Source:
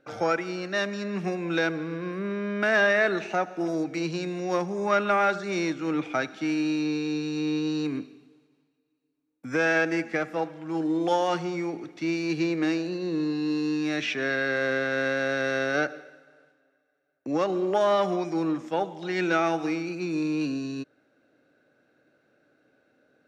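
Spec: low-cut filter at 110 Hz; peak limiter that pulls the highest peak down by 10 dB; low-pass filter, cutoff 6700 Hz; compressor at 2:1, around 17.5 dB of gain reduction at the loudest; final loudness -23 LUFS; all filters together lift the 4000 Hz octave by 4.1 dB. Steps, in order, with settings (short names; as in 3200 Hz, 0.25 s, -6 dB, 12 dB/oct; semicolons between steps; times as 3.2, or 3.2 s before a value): HPF 110 Hz; LPF 6700 Hz; bell 4000 Hz +5.5 dB; compressor 2:1, threshold -52 dBFS; gain +22.5 dB; limiter -15 dBFS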